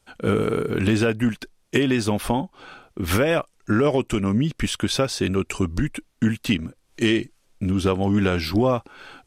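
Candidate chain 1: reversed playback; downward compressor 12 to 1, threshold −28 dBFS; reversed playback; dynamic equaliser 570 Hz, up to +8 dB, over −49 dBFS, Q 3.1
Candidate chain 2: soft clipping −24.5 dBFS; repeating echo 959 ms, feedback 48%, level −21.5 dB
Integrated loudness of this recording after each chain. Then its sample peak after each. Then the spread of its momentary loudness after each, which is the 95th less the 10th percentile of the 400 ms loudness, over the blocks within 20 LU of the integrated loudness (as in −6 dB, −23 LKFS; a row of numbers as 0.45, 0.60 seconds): −32.0, −29.5 LKFS; −14.5, −23.5 dBFS; 8, 7 LU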